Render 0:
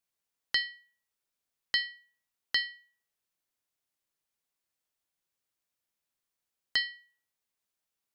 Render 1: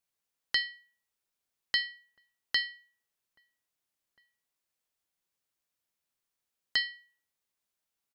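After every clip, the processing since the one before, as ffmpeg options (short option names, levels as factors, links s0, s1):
-filter_complex "[0:a]asplit=2[s0][s1];[s1]adelay=1633,volume=0.0355,highshelf=f=4000:g=-36.7[s2];[s0][s2]amix=inputs=2:normalize=0"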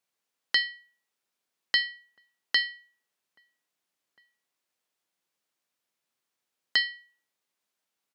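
-af "highpass=170,highshelf=f=8000:g=-7,volume=1.78"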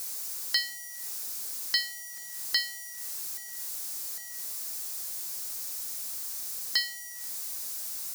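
-af "aeval=exprs='val(0)+0.5*0.0133*sgn(val(0))':c=same,aexciter=amount=3.7:drive=7.7:freq=4400,volume=0.447"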